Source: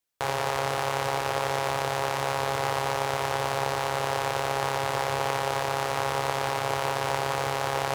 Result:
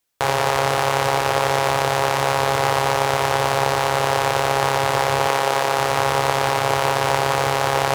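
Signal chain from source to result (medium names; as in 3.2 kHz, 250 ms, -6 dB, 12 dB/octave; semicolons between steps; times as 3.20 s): 5.27–5.79 s: high-pass 180 Hz 12 dB/octave; trim +8.5 dB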